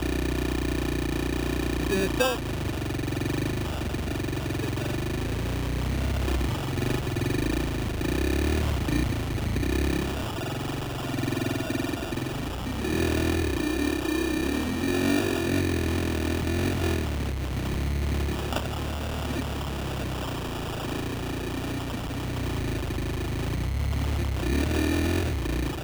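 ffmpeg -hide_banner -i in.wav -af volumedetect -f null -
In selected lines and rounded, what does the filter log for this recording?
mean_volume: -27.2 dB
max_volume: -12.3 dB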